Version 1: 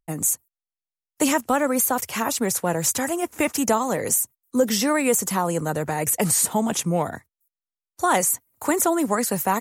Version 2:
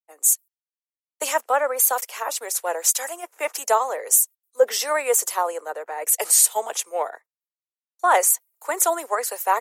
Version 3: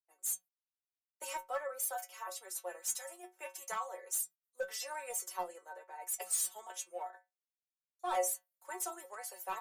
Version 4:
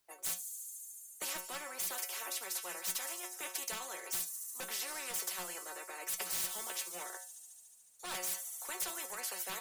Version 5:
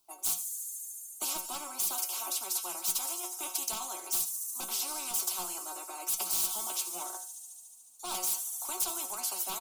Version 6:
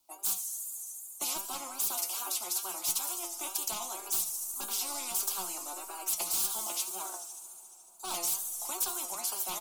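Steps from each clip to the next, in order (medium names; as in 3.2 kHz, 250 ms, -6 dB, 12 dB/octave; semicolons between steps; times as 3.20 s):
steep high-pass 450 Hz 36 dB/octave; three bands expanded up and down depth 100%
overload inside the chain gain 12.5 dB; inharmonic resonator 180 Hz, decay 0.21 s, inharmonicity 0.002; trim -6.5 dB
feedback echo behind a high-pass 72 ms, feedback 82%, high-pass 5.5 kHz, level -20 dB; spectrum-flattening compressor 4:1; trim -2.5 dB
static phaser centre 490 Hz, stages 6; delay 87 ms -16.5 dB; trim +7 dB
wow and flutter 110 cents; algorithmic reverb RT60 4.9 s, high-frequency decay 0.55×, pre-delay 115 ms, DRR 18 dB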